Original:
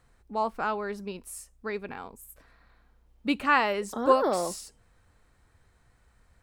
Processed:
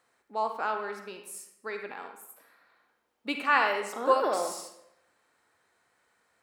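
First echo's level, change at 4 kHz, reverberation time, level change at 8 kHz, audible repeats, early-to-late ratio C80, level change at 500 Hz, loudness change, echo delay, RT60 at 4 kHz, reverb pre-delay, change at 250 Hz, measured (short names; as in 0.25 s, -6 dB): none, -0.5 dB, 0.80 s, -1.0 dB, none, 8.5 dB, -2.5 dB, -1.5 dB, none, 0.60 s, 37 ms, -8.0 dB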